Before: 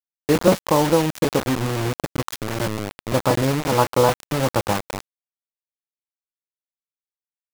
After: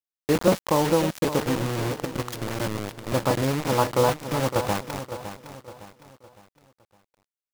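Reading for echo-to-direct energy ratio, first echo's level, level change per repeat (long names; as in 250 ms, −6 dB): −10.5 dB, −11.0 dB, −8.0 dB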